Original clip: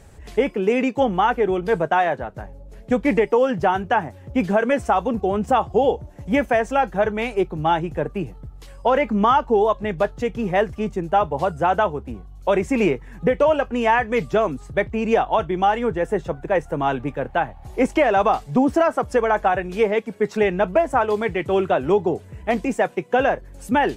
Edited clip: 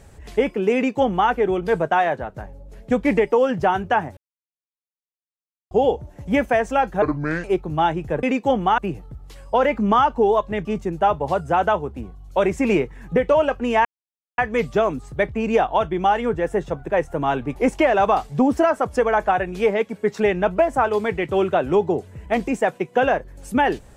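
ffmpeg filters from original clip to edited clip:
-filter_complex "[0:a]asplit=10[a][b][c][d][e][f][g][h][i][j];[a]atrim=end=4.17,asetpts=PTS-STARTPTS,afade=t=out:st=4.166:d=0.004:c=hsin[k];[b]atrim=start=4.17:end=5.71,asetpts=PTS-STARTPTS,volume=0[l];[c]atrim=start=5.71:end=7.024,asetpts=PTS-STARTPTS,afade=t=in:d=0.004:c=hsin[m];[d]atrim=start=7.02:end=7.31,asetpts=PTS-STARTPTS,asetrate=30429,aresample=44100[n];[e]atrim=start=7.306:end=8.102[o];[f]atrim=start=0.748:end=1.302[p];[g]atrim=start=8.098:end=9.972[q];[h]atrim=start=10.758:end=13.96,asetpts=PTS-STARTPTS,afade=t=out:st=3.198:d=0.004:c=hsin,apad=pad_dur=0.53[r];[i]atrim=start=13.96:end=17.142,asetpts=PTS-STARTPTS,afade=t=in:d=0.004:c=hsin[s];[j]atrim=start=17.728[t];[k][l][m]concat=n=3:v=0:a=1[u];[u][n]acrossfade=d=0.004:c1=hsin:c2=hsin[v];[v][o]acrossfade=d=0.004:c1=hsin:c2=hsin[w];[w][p]acrossfade=d=0.004:c1=hsin:c2=hsin[x];[x][q]acrossfade=d=0.004:c1=hsin:c2=hsin[y];[r][s]concat=n=2:v=0:a=1[z];[y][z]acrossfade=d=0.004:c1=hsin:c2=hsin[aa];[aa][t]acrossfade=d=0.004:c1=hsin:c2=hsin"

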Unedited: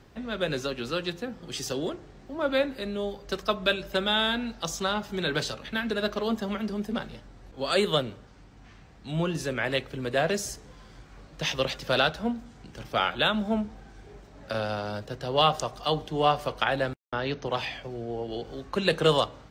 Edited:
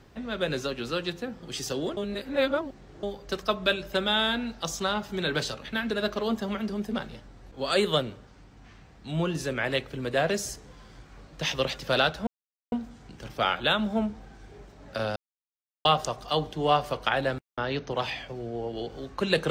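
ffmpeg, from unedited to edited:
-filter_complex "[0:a]asplit=6[a][b][c][d][e][f];[a]atrim=end=1.972[g];[b]atrim=start=1.968:end=3.032,asetpts=PTS-STARTPTS,areverse[h];[c]atrim=start=3.028:end=12.27,asetpts=PTS-STARTPTS,afade=t=out:st=9.238:d=0.004:c=hsin,apad=pad_dur=0.45[i];[d]atrim=start=12.27:end=14.71,asetpts=PTS-STARTPTS,afade=t=in:d=0.004:c=hsin,afade=t=out:st=2.436:d=0.004:c=hsin[j];[e]atrim=start=14.71:end=15.4,asetpts=PTS-STARTPTS,volume=0[k];[f]atrim=start=15.4,asetpts=PTS-STARTPTS,afade=t=in:d=0.004:c=hsin[l];[g][h]acrossfade=d=0.004:c1=hsin:c2=hsin[m];[i][j][k][l]concat=n=4:v=0:a=1[n];[m][n]acrossfade=d=0.004:c1=hsin:c2=hsin"

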